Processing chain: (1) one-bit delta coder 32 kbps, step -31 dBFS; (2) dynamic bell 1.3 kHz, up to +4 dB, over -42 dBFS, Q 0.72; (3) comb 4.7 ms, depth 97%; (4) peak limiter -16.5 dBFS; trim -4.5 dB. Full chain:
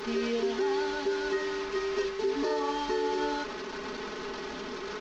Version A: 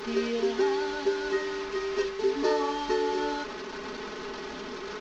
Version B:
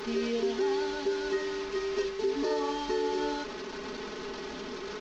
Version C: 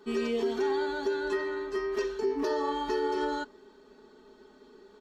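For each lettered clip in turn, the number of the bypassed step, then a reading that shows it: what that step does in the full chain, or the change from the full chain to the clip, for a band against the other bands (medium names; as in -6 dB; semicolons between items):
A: 4, crest factor change +5.5 dB; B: 2, 2 kHz band -2.5 dB; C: 1, 4 kHz band -4.0 dB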